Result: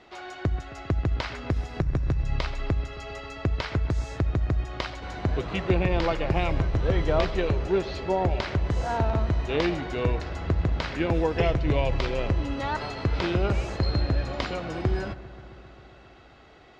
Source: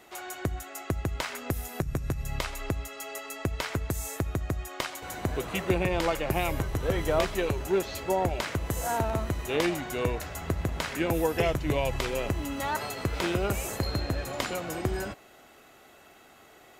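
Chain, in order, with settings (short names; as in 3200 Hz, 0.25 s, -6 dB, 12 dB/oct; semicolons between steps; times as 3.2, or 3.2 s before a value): Chebyshev low-pass 4800 Hz, order 3; low shelf 120 Hz +7.5 dB; analogue delay 0.133 s, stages 2048, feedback 80%, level -18 dB; gain +1 dB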